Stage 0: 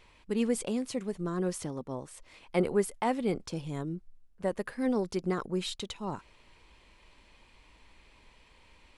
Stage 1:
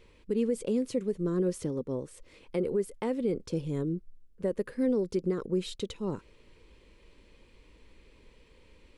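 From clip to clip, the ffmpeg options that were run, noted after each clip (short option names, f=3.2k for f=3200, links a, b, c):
-af "lowshelf=f=590:t=q:w=3:g=6,alimiter=limit=-17dB:level=0:latency=1:release=238,volume=-3dB"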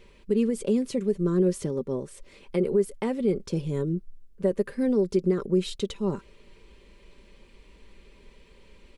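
-af "aecho=1:1:5.1:0.45,volume=3.5dB"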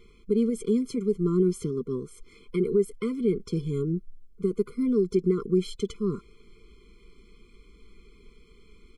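-af "afftfilt=real='re*eq(mod(floor(b*sr/1024/500),2),0)':imag='im*eq(mod(floor(b*sr/1024/500),2),0)':win_size=1024:overlap=0.75"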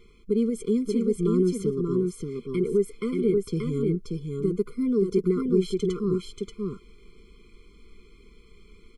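-af "aecho=1:1:582:0.668"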